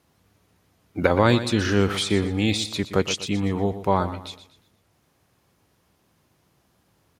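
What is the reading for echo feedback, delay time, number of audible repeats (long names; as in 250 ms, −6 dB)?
35%, 121 ms, 3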